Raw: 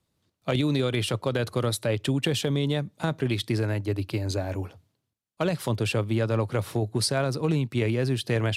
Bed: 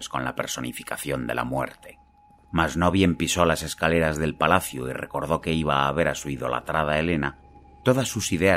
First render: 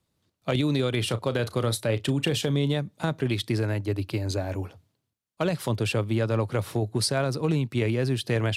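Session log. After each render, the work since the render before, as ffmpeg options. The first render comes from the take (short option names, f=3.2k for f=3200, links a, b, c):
-filter_complex "[0:a]asettb=1/sr,asplit=3[a][b][c];[a]atrim=end=0.994[d];[b]atrim=start=0.99:end=2.74,asetpts=PTS-STARTPTS,afade=t=in:d=0.004:c=qsin,afade=t=out:st=1.746:d=0.004:c=qsin,asplit=2[e][f];[f]adelay=35,volume=-14dB[g];[e][g]amix=inputs=2:normalize=0,atrim=end_sample=77175[h];[c]atrim=start=2.736[i];[d][h]acrossfade=d=0.004:c1=hsin:c2=qsin[j];[j][i]acrossfade=d=0.004:c1=qsin:c2=hsin"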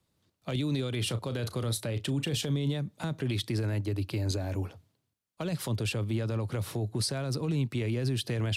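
-filter_complex "[0:a]alimiter=limit=-21dB:level=0:latency=1:release=30,acrossover=split=310|3000[a][b][c];[b]acompressor=threshold=-39dB:ratio=2.5[d];[a][d][c]amix=inputs=3:normalize=0"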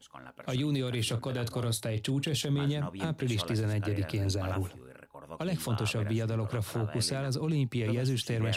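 -filter_complex "[1:a]volume=-20.5dB[a];[0:a][a]amix=inputs=2:normalize=0"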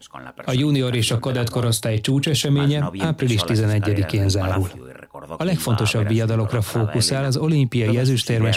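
-af "volume=11.5dB"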